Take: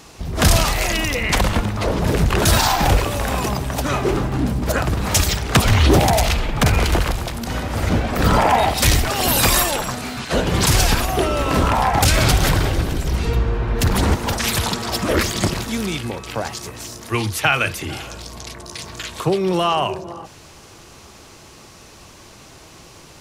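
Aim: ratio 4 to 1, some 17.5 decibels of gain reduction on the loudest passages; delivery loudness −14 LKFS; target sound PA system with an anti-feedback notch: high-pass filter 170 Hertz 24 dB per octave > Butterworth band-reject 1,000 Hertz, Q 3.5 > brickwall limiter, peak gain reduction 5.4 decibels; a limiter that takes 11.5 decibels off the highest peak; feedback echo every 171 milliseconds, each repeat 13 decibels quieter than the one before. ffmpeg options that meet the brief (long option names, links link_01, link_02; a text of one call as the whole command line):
ffmpeg -i in.wav -af "acompressor=threshold=-32dB:ratio=4,alimiter=level_in=3dB:limit=-24dB:level=0:latency=1,volume=-3dB,highpass=frequency=170:width=0.5412,highpass=frequency=170:width=1.3066,asuperstop=centerf=1000:order=8:qfactor=3.5,aecho=1:1:171|342|513:0.224|0.0493|0.0108,volume=25.5dB,alimiter=limit=-4.5dB:level=0:latency=1" out.wav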